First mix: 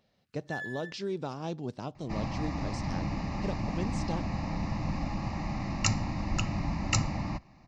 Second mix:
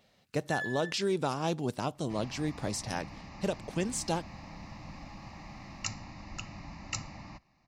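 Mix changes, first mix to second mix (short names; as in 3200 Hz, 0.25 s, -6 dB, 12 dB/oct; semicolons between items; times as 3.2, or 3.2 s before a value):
speech: remove ladder low-pass 6800 Hz, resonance 30%; second sound -10.5 dB; master: add tilt shelf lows -4 dB, about 870 Hz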